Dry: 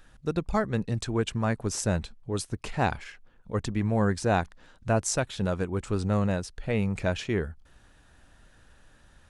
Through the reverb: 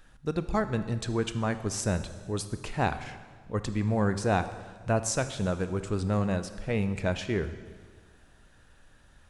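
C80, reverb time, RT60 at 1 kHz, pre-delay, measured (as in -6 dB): 13.0 dB, 1.5 s, 1.5 s, 24 ms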